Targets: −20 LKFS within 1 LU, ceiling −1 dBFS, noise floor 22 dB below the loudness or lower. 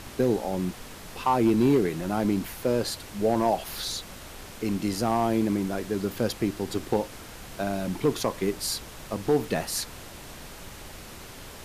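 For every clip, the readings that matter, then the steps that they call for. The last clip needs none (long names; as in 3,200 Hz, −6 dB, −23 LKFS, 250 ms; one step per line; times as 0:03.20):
share of clipped samples 0.4%; peaks flattened at −14.5 dBFS; background noise floor −43 dBFS; target noise floor −50 dBFS; integrated loudness −27.5 LKFS; sample peak −14.5 dBFS; target loudness −20.0 LKFS
→ clipped peaks rebuilt −14.5 dBFS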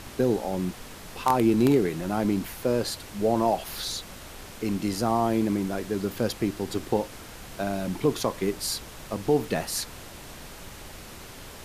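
share of clipped samples 0.0%; background noise floor −43 dBFS; target noise floor −49 dBFS
→ noise reduction from a noise print 6 dB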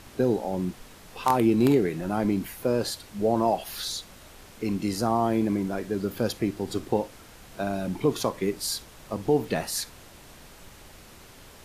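background noise floor −49 dBFS; integrated loudness −27.0 LKFS; sample peak −5.5 dBFS; target loudness −20.0 LKFS
→ level +7 dB
brickwall limiter −1 dBFS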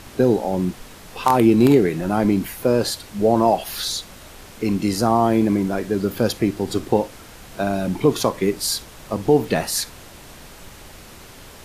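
integrated loudness −20.0 LKFS; sample peak −1.0 dBFS; background noise floor −42 dBFS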